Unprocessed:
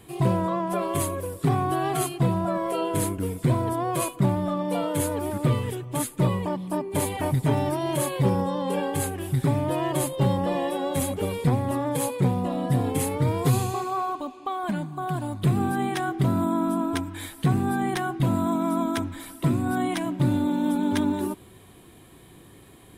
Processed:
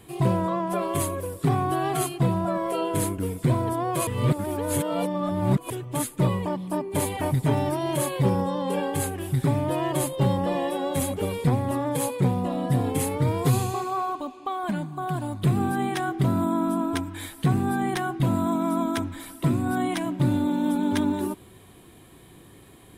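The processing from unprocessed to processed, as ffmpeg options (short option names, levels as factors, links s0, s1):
-filter_complex "[0:a]asplit=3[s0][s1][s2];[s0]atrim=end=4.072[s3];[s1]atrim=start=4.068:end=5.702,asetpts=PTS-STARTPTS,areverse[s4];[s2]atrim=start=5.698[s5];[s3][s4]acrossfade=d=0.004:c1=hsin:c2=hsin[s6];[s6][s5]acrossfade=d=0.004:c1=hsin:c2=hsin"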